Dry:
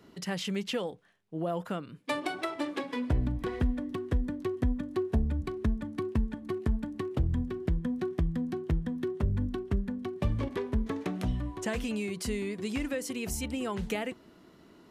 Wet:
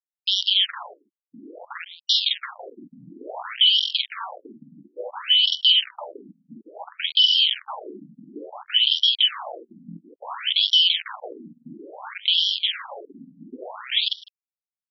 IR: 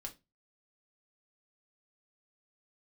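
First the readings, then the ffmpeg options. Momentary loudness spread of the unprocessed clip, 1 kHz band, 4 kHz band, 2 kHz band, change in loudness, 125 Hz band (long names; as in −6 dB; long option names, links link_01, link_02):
4 LU, +4.5 dB, +28.0 dB, +8.0 dB, +14.5 dB, below −20 dB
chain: -filter_complex "[0:a]afftfilt=real='real(if(lt(b,272),68*(eq(floor(b/68),0)*1+eq(floor(b/68),1)*3+eq(floor(b/68),2)*0+eq(floor(b/68),3)*2)+mod(b,68),b),0)':imag='imag(if(lt(b,272),68*(eq(floor(b/68),0)*1+eq(floor(b/68),1)*3+eq(floor(b/68),2)*0+eq(floor(b/68),3)*2)+mod(b,68),b),0)':win_size=2048:overlap=0.75,bandreject=frequency=60:width_type=h:width=6,bandreject=frequency=120:width_type=h:width=6,bandreject=frequency=180:width_type=h:width=6,afwtdn=0.0158,aresample=16000,volume=30.5dB,asoftclip=hard,volume=-30.5dB,aresample=44100,acrusher=bits=4:mix=0:aa=0.000001,aexciter=amount=2:drive=2.2:freq=2800,asplit=2[link_01][link_02];[link_02]adelay=47,volume=-2dB[link_03];[link_01][link_03]amix=inputs=2:normalize=0,aecho=1:1:154:0.0668,alimiter=level_in=17.5dB:limit=-1dB:release=50:level=0:latency=1,afftfilt=real='re*between(b*sr/1024,200*pow(4100/200,0.5+0.5*sin(2*PI*0.58*pts/sr))/1.41,200*pow(4100/200,0.5+0.5*sin(2*PI*0.58*pts/sr))*1.41)':imag='im*between(b*sr/1024,200*pow(4100/200,0.5+0.5*sin(2*PI*0.58*pts/sr))/1.41,200*pow(4100/200,0.5+0.5*sin(2*PI*0.58*pts/sr))*1.41)':win_size=1024:overlap=0.75"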